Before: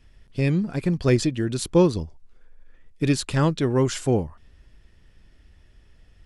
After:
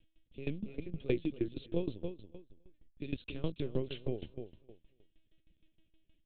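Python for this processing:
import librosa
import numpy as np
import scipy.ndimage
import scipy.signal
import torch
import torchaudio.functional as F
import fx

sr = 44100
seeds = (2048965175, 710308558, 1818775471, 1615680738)

y = fx.low_shelf(x, sr, hz=390.0, db=-5.0)
y = fx.lpc_vocoder(y, sr, seeds[0], excitation='pitch_kept', order=8)
y = fx.band_shelf(y, sr, hz=1200.0, db=-14.5, octaves=1.7)
y = fx.echo_feedback(y, sr, ms=279, feedback_pct=23, wet_db=-10.0)
y = fx.tremolo_decay(y, sr, direction='decaying', hz=6.4, depth_db=19)
y = y * librosa.db_to_amplitude(-5.5)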